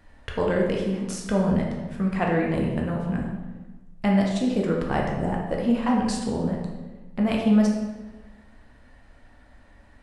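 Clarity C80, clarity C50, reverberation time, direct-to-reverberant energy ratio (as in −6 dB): 5.0 dB, 2.5 dB, 1.2 s, −1.5 dB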